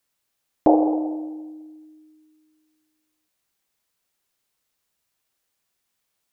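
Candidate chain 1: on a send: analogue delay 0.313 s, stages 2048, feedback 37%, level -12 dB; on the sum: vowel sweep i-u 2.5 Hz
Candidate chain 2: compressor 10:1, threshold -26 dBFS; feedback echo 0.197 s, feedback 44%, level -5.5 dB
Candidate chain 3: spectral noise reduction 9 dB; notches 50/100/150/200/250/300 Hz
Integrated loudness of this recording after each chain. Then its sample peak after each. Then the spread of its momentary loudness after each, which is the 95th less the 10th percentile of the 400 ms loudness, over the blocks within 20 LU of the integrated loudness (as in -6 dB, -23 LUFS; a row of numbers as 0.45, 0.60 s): -28.5, -30.5, -22.5 LUFS; -13.5, -11.5, -3.5 dBFS; 20, 17, 19 LU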